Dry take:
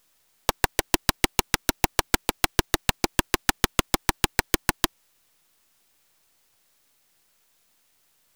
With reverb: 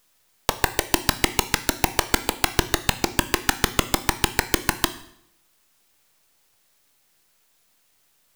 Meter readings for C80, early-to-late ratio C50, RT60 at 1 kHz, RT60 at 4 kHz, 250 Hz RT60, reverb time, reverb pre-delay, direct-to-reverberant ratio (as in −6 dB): 17.0 dB, 14.5 dB, 0.70 s, 0.65 s, 0.75 s, 0.75 s, 14 ms, 10.5 dB